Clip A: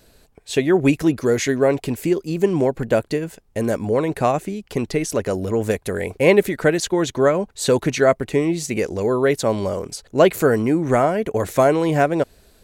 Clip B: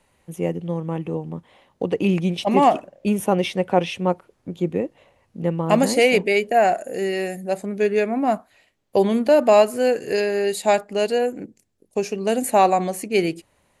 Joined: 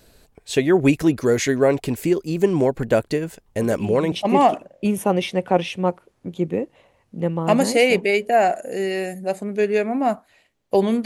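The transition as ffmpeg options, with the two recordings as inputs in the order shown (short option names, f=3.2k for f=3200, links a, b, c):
-filter_complex "[1:a]asplit=2[a][b];[0:a]apad=whole_dur=11.05,atrim=end=11.05,atrim=end=4.122[c];[b]atrim=start=2.338:end=9.27[d];[a]atrim=start=1.68:end=2.34,asetpts=PTS-STARTPTS,volume=-11.5dB,afade=t=in:d=0.004:c=hsin,afade=t=out:st=0.656:d=0.004:c=hsin,adelay=3460[e];[c][d]acrossfade=d=0.004:c1=hsin:c2=hsin[f];[f][e]amix=inputs=2:normalize=0"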